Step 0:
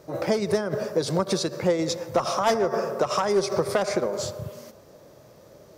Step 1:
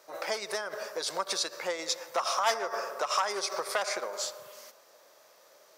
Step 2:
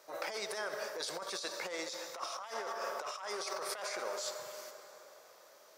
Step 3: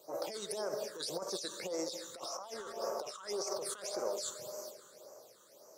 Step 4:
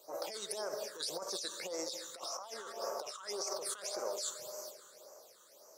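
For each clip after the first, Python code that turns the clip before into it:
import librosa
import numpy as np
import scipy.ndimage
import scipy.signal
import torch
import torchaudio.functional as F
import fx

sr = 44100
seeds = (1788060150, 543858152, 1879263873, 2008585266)

y1 = scipy.signal.sosfilt(scipy.signal.butter(2, 960.0, 'highpass', fs=sr, output='sos'), x)
y2 = fx.rev_plate(y1, sr, seeds[0], rt60_s=3.8, hf_ratio=0.7, predelay_ms=0, drr_db=10.5)
y2 = fx.over_compress(y2, sr, threshold_db=-35.0, ratio=-1.0)
y2 = y2 * 10.0 ** (-5.0 / 20.0)
y3 = fx.peak_eq(y2, sr, hz=1900.0, db=-13.5, octaves=1.8)
y3 = fx.phaser_stages(y3, sr, stages=8, low_hz=670.0, high_hz=3600.0, hz=1.8, feedback_pct=25)
y3 = y3 * 10.0 ** (6.5 / 20.0)
y4 = fx.low_shelf(y3, sr, hz=390.0, db=-11.5)
y4 = y4 * 10.0 ** (1.5 / 20.0)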